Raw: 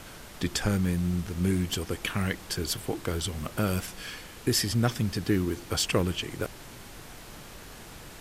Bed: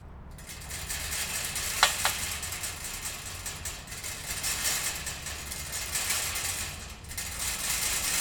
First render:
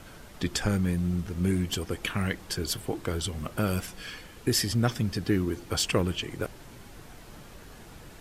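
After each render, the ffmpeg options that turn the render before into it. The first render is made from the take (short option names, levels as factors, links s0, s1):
-af "afftdn=nr=6:nf=-46"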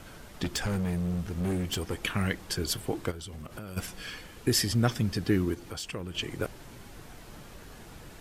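-filter_complex "[0:a]asettb=1/sr,asplit=3[s0][s1][s2];[s0]atrim=end=0.444[s3];[s1]atrim=start=0.44:end=1.98,asetpts=PTS-STARTPTS,afade=t=in:d=0.004:c=qsin,afade=t=out:st=1.536:d=0.004:c=qsin,asoftclip=type=hard:threshold=0.0501[s4];[s2]atrim=start=1.976[s5];[s3][s4]acrossfade=d=0.004:c1=hsin:c2=qsin[s6];[s6][s5]acrossfade=d=0.004:c1=qsin:c2=hsin,asplit=3[s7][s8][s9];[s7]afade=t=out:st=3.1:d=0.02[s10];[s8]acompressor=threshold=0.0141:ratio=12:attack=3.2:release=140:knee=1:detection=peak,afade=t=in:st=3.1:d=0.02,afade=t=out:st=3.76:d=0.02[s11];[s9]afade=t=in:st=3.76:d=0.02[s12];[s10][s11][s12]amix=inputs=3:normalize=0,asettb=1/sr,asplit=3[s13][s14][s15];[s13]atrim=end=5.544[s16];[s14]atrim=start=5.54:end=6.15,asetpts=PTS-STARTPTS,afade=t=in:d=0.004:c=qsin,afade=t=out:st=0.606:d=0.004:c=qsin,acompressor=threshold=0.00794:ratio=2:attack=3.2:release=140:knee=1:detection=peak[s17];[s15]atrim=start=6.146[s18];[s16][s17]acrossfade=d=0.004:c1=hsin:c2=qsin[s19];[s19][s18]acrossfade=d=0.004:c1=qsin:c2=hsin"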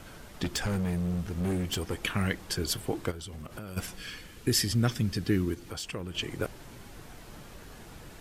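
-filter_complex "[0:a]asettb=1/sr,asplit=3[s0][s1][s2];[s0]atrim=end=3.964[s3];[s1]atrim=start=3.96:end=5.69,asetpts=PTS-STARTPTS,afade=t=in:d=0.004:c=qsin,afade=t=out:st=1.726:d=0.004:c=qsin,equalizer=f=770:t=o:w=1.6:g=-5.5[s4];[s2]atrim=start=5.686[s5];[s3][s4]acrossfade=d=0.004:c1=hsin:c2=qsin[s6];[s6][s5]acrossfade=d=0.004:c1=qsin:c2=hsin"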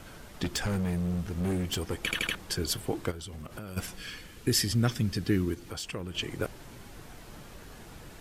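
-filter_complex "[0:a]asplit=5[s0][s1][s2][s3][s4];[s0]atrim=end=2.112[s5];[s1]atrim=start=2.028:end=2.112[s6];[s2]atrim=start=2.028:end=2.112[s7];[s3]atrim=start=2.028:end=2.112[s8];[s4]atrim=start=2.348[s9];[s5][s6]acrossfade=d=0.004:c1=hsin:c2=hsin[s10];[s10][s7]acrossfade=d=0.004:c1=hsin:c2=hsin[s11];[s11][s8]acrossfade=d=0.004:c1=hsin:c2=hsin[s12];[s12][s9]acrossfade=d=0.004:c1=hsin:c2=hsin"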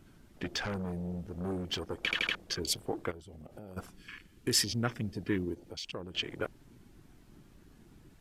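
-af "afwtdn=0.00891,lowshelf=f=260:g=-10.5"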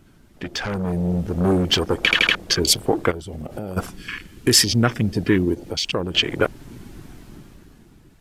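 -filter_complex "[0:a]asplit=2[s0][s1];[s1]alimiter=level_in=1.19:limit=0.0631:level=0:latency=1:release=320,volume=0.841,volume=0.891[s2];[s0][s2]amix=inputs=2:normalize=0,dynaudnorm=f=110:g=17:m=5.01"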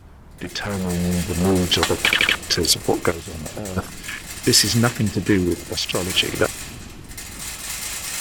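-filter_complex "[1:a]volume=1.06[s0];[0:a][s0]amix=inputs=2:normalize=0"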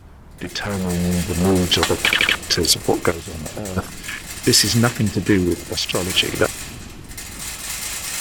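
-af "volume=1.19,alimiter=limit=0.794:level=0:latency=1"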